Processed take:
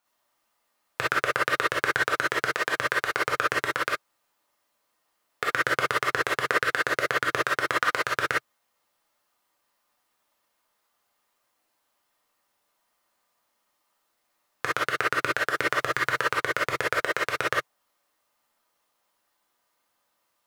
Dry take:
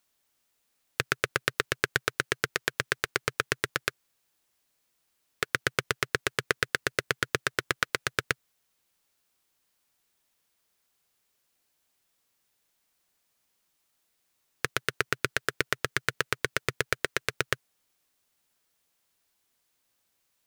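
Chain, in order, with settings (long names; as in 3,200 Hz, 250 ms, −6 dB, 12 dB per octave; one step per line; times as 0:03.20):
0:15.56–0:16.30: mu-law and A-law mismatch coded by mu
parametric band 900 Hz +13 dB 1.9 octaves
reverb whose tail is shaped and stops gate 80 ms rising, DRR −5 dB
level −8 dB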